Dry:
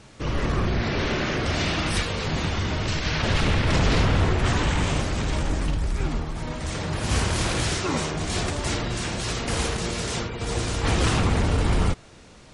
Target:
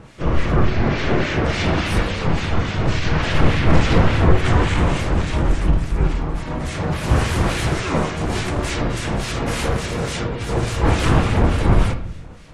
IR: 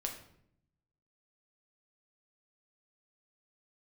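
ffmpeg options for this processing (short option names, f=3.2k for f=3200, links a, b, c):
-filter_complex "[0:a]asplit=2[a][b];[b]asetrate=52444,aresample=44100,atempo=0.840896,volume=-7dB[c];[a][c]amix=inputs=2:normalize=0,acrossover=split=1600[d][e];[d]aeval=exprs='val(0)*(1-0.7/2+0.7/2*cos(2*PI*3.5*n/s))':c=same[f];[e]aeval=exprs='val(0)*(1-0.7/2-0.7/2*cos(2*PI*3.5*n/s))':c=same[g];[f][g]amix=inputs=2:normalize=0,asplit=2[h][i];[1:a]atrim=start_sample=2205,lowpass=3.1k[j];[i][j]afir=irnorm=-1:irlink=0,volume=1.5dB[k];[h][k]amix=inputs=2:normalize=0,volume=1.5dB"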